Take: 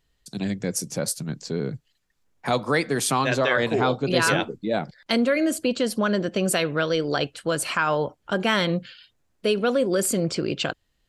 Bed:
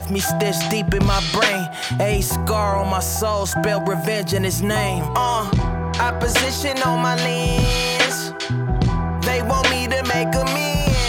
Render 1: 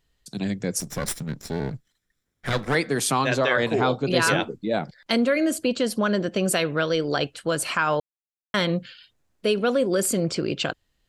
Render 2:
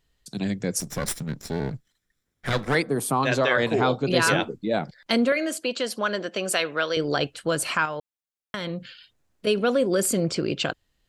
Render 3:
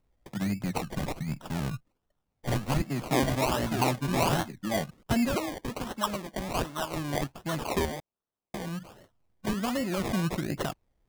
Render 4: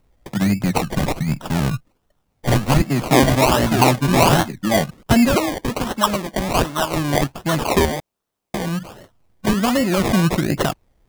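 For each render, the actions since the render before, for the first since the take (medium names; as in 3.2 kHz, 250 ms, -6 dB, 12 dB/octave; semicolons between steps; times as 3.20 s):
0.80–2.75 s: comb filter that takes the minimum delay 0.54 ms; 8.00–8.54 s: mute
2.82–3.23 s: high-order bell 3.4 kHz -12.5 dB 2.5 oct; 5.32–6.97 s: frequency weighting A; 7.85–9.47 s: compression, threshold -27 dBFS
static phaser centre 2.3 kHz, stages 8; decimation with a swept rate 26×, swing 60% 1.3 Hz
trim +12 dB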